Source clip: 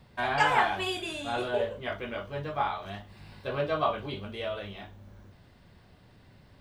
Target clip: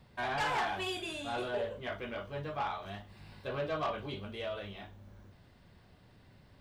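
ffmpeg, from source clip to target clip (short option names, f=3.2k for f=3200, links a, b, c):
-af "asoftclip=type=tanh:threshold=-24.5dB,volume=-3.5dB"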